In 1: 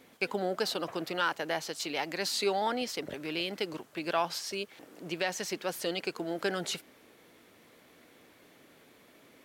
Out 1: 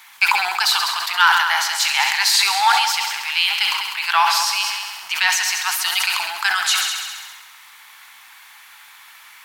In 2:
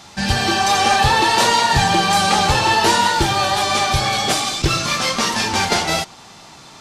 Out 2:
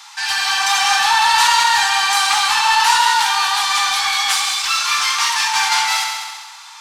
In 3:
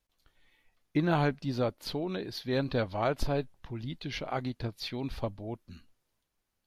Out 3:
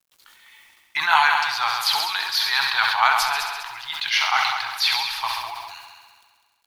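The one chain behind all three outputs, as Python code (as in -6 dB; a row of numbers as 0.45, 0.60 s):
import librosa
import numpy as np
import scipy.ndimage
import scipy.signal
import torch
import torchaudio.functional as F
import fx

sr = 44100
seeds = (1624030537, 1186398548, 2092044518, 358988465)

p1 = scipy.signal.sosfilt(scipy.signal.ellip(4, 1.0, 40, 870.0, 'highpass', fs=sr, output='sos'), x)
p2 = fx.high_shelf(p1, sr, hz=9700.0, db=2.5)
p3 = 10.0 ** (-22.0 / 20.0) * np.tanh(p2 / 10.0 ** (-22.0 / 20.0))
p4 = p2 + F.gain(torch.from_numpy(p3), -6.0).numpy()
p5 = fx.quant_dither(p4, sr, seeds[0], bits=12, dither='none')
p6 = p5 + fx.echo_heads(p5, sr, ms=67, heads='all three', feedback_pct=52, wet_db=-13.0, dry=0)
p7 = fx.sustainer(p6, sr, db_per_s=37.0)
y = librosa.util.normalize(p7) * 10.0 ** (-2 / 20.0)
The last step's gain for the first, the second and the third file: +13.5, 0.0, +14.5 dB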